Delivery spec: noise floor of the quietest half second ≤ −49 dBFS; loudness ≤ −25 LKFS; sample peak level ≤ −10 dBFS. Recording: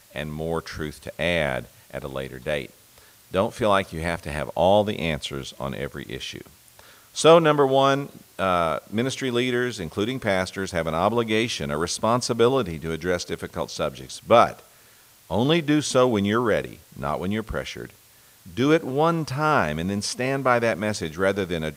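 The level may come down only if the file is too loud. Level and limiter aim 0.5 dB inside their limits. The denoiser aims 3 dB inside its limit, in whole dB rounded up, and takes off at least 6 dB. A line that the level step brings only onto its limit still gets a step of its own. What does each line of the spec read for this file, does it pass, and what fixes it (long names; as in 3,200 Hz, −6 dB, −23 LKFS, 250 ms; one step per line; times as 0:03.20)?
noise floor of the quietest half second −54 dBFS: in spec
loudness −23.5 LKFS: out of spec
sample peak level −2.5 dBFS: out of spec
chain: level −2 dB
brickwall limiter −10.5 dBFS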